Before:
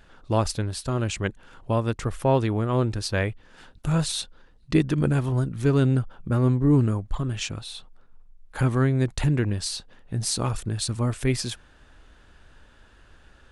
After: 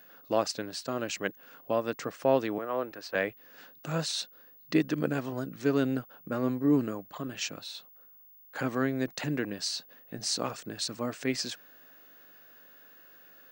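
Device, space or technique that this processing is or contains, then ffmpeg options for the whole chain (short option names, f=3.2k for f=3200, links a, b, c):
old television with a line whistle: -filter_complex "[0:a]asettb=1/sr,asplit=3[a][b][c];[a]atrim=end=2.584[d];[b]atrim=start=2.58:end=3.15,asetpts=PTS-STARTPTS,afade=t=in:d=0.004:c=qsin,afade=t=out:st=0.566:d=0.004:c=qsin,acrossover=split=390 2600:gain=0.251 1 0.224[e][f][g];[e][f][g]amix=inputs=3:normalize=0[h];[c]atrim=start=3.146[i];[d][h]acrossfade=d=0.004:c1=hsin:c2=qsin[j];[j][i]acrossfade=d=0.004:c1=qsin:c2=hsin,highpass=f=210:w=0.5412,highpass=f=210:w=1.3066,equalizer=f=220:t=q:w=4:g=-7,equalizer=f=370:t=q:w=4:g=-7,equalizer=f=920:t=q:w=4:g=-7,equalizer=f=1.3k:t=q:w=4:g=-3,equalizer=f=2.3k:t=q:w=4:g=-3,equalizer=f=3.4k:t=q:w=4:g=-6,lowpass=f=6.8k:w=0.5412,lowpass=f=6.8k:w=1.3066,aeval=exprs='val(0)+0.00224*sin(2*PI*15625*n/s)':c=same"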